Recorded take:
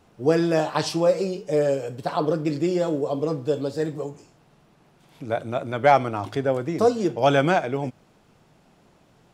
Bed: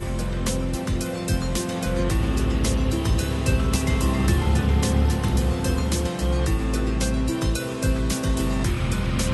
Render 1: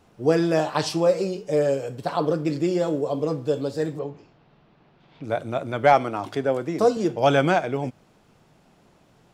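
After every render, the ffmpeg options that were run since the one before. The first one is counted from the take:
-filter_complex "[0:a]asettb=1/sr,asplit=3[s0][s1][s2];[s0]atrim=end=3.994[s3];[s1]atrim=start=3.99:end=5.24,asetpts=PTS-STARTPTS,afade=t=in:d=0.004:c=qsin,afade=t=out:st=1.246:d=0.004:c=qsin,lowpass=f=4300:w=0.5412,lowpass=f=4300:w=1.3066[s4];[s2]atrim=start=5.236[s5];[s3][s4]acrossfade=d=0.004:c1=hsin:c2=qsin[s6];[s6][s5]acrossfade=d=0.004:c1=qsin:c2=hsin,asettb=1/sr,asplit=3[s7][s8][s9];[s7]atrim=end=5.934[s10];[s8]atrim=start=5.93:end=6.97,asetpts=PTS-STARTPTS,afade=t=in:d=0.004:c=qsin,afade=t=out:st=1.036:d=0.004:c=qsin,highpass=150[s11];[s9]atrim=start=6.966[s12];[s10][s11]acrossfade=d=0.004:c1=hsin:c2=qsin[s13];[s13][s12]acrossfade=d=0.004:c1=qsin:c2=hsin"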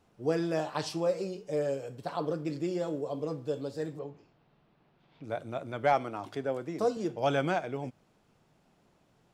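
-af "volume=0.335"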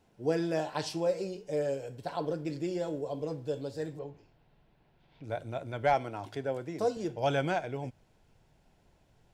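-af "bandreject=f=1200:w=5.3,asubboost=boost=4.5:cutoff=89"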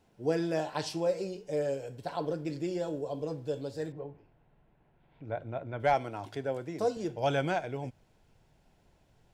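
-filter_complex "[0:a]asettb=1/sr,asplit=3[s0][s1][s2];[s0]atrim=end=2.814[s3];[s1]atrim=start=2.81:end=3.36,asetpts=PTS-STARTPTS,afade=t=in:d=0.004:c=qsin,afade=t=out:st=0.546:d=0.004:c=qsin,bandreject=f=2100:w=8[s4];[s2]atrim=start=3.356[s5];[s3][s4]acrossfade=d=0.004:c1=hsin:c2=qsin[s6];[s6][s5]acrossfade=d=0.004:c1=qsin:c2=hsin,asettb=1/sr,asplit=3[s7][s8][s9];[s7]atrim=end=3.924[s10];[s8]atrim=start=3.92:end=5.8,asetpts=PTS-STARTPTS,afade=t=in:d=0.004:c=qsin,afade=t=out:st=1.876:d=0.004:c=qsin,lowpass=2200[s11];[s9]atrim=start=5.796[s12];[s10][s11]acrossfade=d=0.004:c1=hsin:c2=qsin[s13];[s13][s12]acrossfade=d=0.004:c1=qsin:c2=hsin"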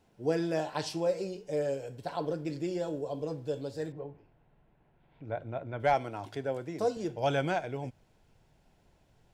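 -af anull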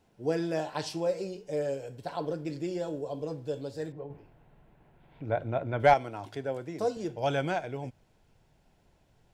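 -filter_complex "[0:a]asettb=1/sr,asplit=3[s0][s1][s2];[s0]atrim=end=4.104[s3];[s1]atrim=start=4.1:end=5.94,asetpts=PTS-STARTPTS,afade=t=in:d=0.004:c=qsin,afade=t=out:st=1.836:d=0.004:c=qsin,acontrast=61[s4];[s2]atrim=start=5.936[s5];[s3][s4]acrossfade=d=0.004:c1=hsin:c2=qsin[s6];[s6][s5]acrossfade=d=0.004:c1=qsin:c2=hsin"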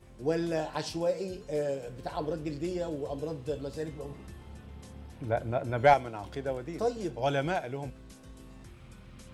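-filter_complex "[1:a]volume=0.0447[s0];[0:a][s0]amix=inputs=2:normalize=0"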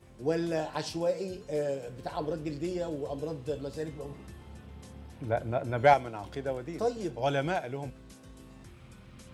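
-af "highpass=53"

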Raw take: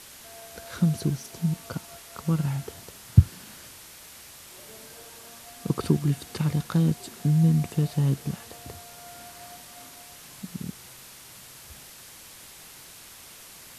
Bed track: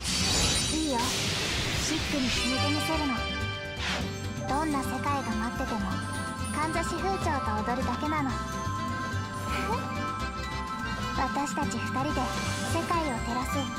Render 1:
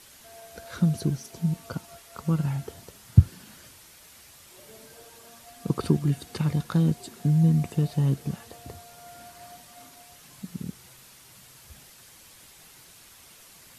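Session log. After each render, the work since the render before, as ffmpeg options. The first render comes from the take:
-af "afftdn=nr=6:nf=-47"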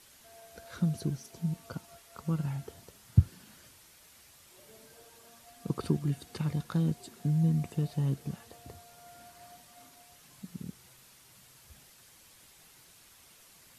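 -af "volume=0.473"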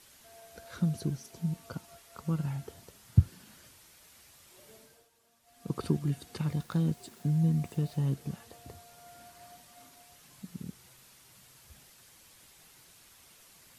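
-filter_complex "[0:a]asettb=1/sr,asplit=3[s0][s1][s2];[s0]atrim=end=6.494[s3];[s1]atrim=start=6.49:end=8.1,asetpts=PTS-STARTPTS,afade=t=in:d=0.004:c=qsin,afade=t=out:st=1.606:d=0.004:c=qsin,aeval=exprs='val(0)*gte(abs(val(0)),0.00178)':c=same[s4];[s2]atrim=start=8.096[s5];[s3][s4]acrossfade=d=0.004:c1=hsin:c2=qsin[s6];[s6][s5]acrossfade=d=0.004:c1=qsin:c2=hsin,asplit=3[s7][s8][s9];[s7]atrim=end=5.09,asetpts=PTS-STARTPTS,afade=t=out:st=4.73:d=0.36:silence=0.211349[s10];[s8]atrim=start=5.09:end=5.42,asetpts=PTS-STARTPTS,volume=0.211[s11];[s9]atrim=start=5.42,asetpts=PTS-STARTPTS,afade=t=in:d=0.36:silence=0.211349[s12];[s10][s11][s12]concat=n=3:v=0:a=1"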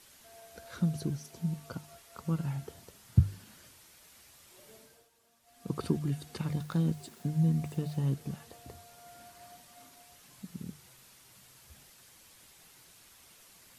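-af "bandreject=f=50:t=h:w=6,bandreject=f=100:t=h:w=6,bandreject=f=150:t=h:w=6"

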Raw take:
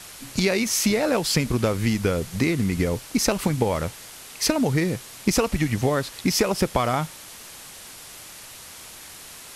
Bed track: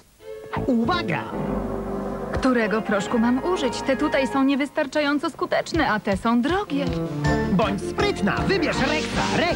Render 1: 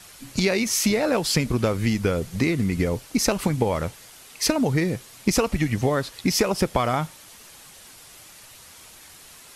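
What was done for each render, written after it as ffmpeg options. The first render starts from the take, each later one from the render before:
-af "afftdn=nr=6:nf=-42"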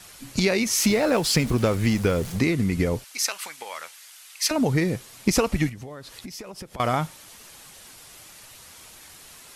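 -filter_complex "[0:a]asettb=1/sr,asplit=3[s0][s1][s2];[s0]atrim=end=0.784[s3];[s1]atrim=start=0.78:end=2.39,asetpts=PTS-STARTPTS,afade=t=in:d=0.004:c=qsin,afade=t=out:st=1.606:d=0.004:c=qsin,aeval=exprs='val(0)+0.5*0.02*sgn(val(0))':c=same[s4];[s2]atrim=start=2.386[s5];[s3][s4]acrossfade=d=0.004:c1=hsin:c2=qsin[s6];[s6][s5]acrossfade=d=0.004:c1=qsin:c2=hsin,asettb=1/sr,asplit=3[s7][s8][s9];[s7]atrim=end=3.044[s10];[s8]atrim=start=3.04:end=4.51,asetpts=PTS-STARTPTS,afade=t=in:d=0.004:c=qsin,afade=t=out:st=1.466:d=0.004:c=qsin,highpass=1400[s11];[s9]atrim=start=4.506[s12];[s10][s11]acrossfade=d=0.004:c1=hsin:c2=qsin[s13];[s13][s12]acrossfade=d=0.004:c1=qsin:c2=hsin,asettb=1/sr,asplit=3[s14][s15][s16];[s14]atrim=end=5.694[s17];[s15]atrim=start=5.69:end=6.8,asetpts=PTS-STARTPTS,afade=t=in:d=0.004:c=qsin,afade=t=out:st=1.106:d=0.004:c=qsin,acompressor=threshold=0.0158:ratio=6:attack=3.2:release=140:knee=1:detection=peak[s18];[s16]atrim=start=6.796[s19];[s17][s18]acrossfade=d=0.004:c1=hsin:c2=qsin[s20];[s20][s19]acrossfade=d=0.004:c1=qsin:c2=hsin"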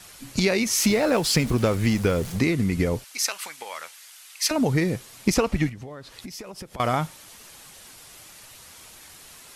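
-filter_complex "[0:a]asettb=1/sr,asplit=3[s0][s1][s2];[s0]atrim=end=5.344[s3];[s1]atrim=start=5.34:end=6.19,asetpts=PTS-STARTPTS,afade=t=in:d=0.004:c=qsin,afade=t=out:st=0.846:d=0.004:c=qsin,highshelf=f=6900:g=-9[s4];[s2]atrim=start=6.186[s5];[s3][s4]acrossfade=d=0.004:c1=hsin:c2=qsin[s6];[s6][s5]acrossfade=d=0.004:c1=qsin:c2=hsin"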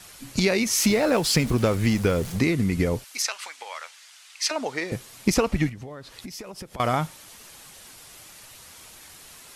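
-filter_complex "[0:a]asettb=1/sr,asplit=3[s0][s1][s2];[s0]atrim=end=3.224[s3];[s1]atrim=start=3.22:end=4.92,asetpts=PTS-STARTPTS,afade=t=in:d=0.004:c=qsin,afade=t=out:st=1.696:d=0.004:c=qsin,highpass=540,lowpass=7200[s4];[s2]atrim=start=4.916[s5];[s3][s4]acrossfade=d=0.004:c1=hsin:c2=qsin[s6];[s6][s5]acrossfade=d=0.004:c1=qsin:c2=hsin"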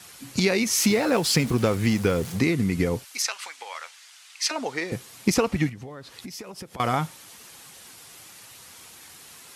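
-af "highpass=86,bandreject=f=610:w=12"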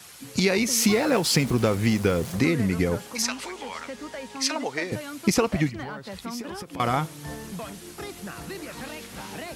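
-filter_complex "[1:a]volume=0.158[s0];[0:a][s0]amix=inputs=2:normalize=0"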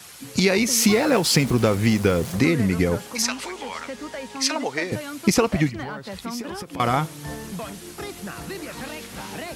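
-af "volume=1.41"

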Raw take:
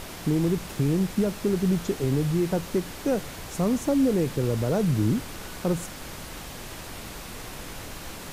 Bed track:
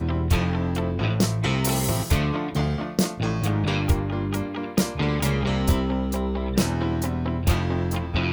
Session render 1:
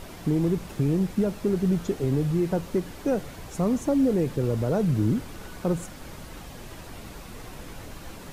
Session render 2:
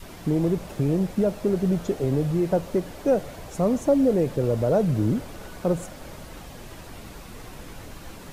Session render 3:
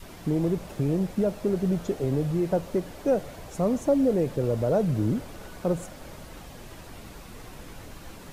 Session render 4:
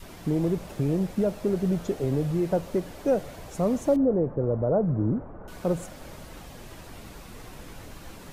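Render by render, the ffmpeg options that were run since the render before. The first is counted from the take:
-af "afftdn=nr=7:nf=-39"
-af "adynamicequalizer=threshold=0.00708:dfrequency=600:dqfactor=2:tfrequency=600:tqfactor=2:attack=5:release=100:ratio=0.375:range=4:mode=boostabove:tftype=bell"
-af "volume=0.75"
-filter_complex "[0:a]asettb=1/sr,asplit=3[s0][s1][s2];[s0]atrim=end=3.964[s3];[s1]atrim=start=3.96:end=5.48,asetpts=PTS-STARTPTS,afade=t=in:d=0.004:c=qsin,afade=t=out:st=1.516:d=0.004:c=qsin,lowpass=f=1300:w=0.5412,lowpass=f=1300:w=1.3066[s4];[s2]atrim=start=5.476[s5];[s3][s4]acrossfade=d=0.004:c1=hsin:c2=qsin[s6];[s6][s5]acrossfade=d=0.004:c1=qsin:c2=hsin"

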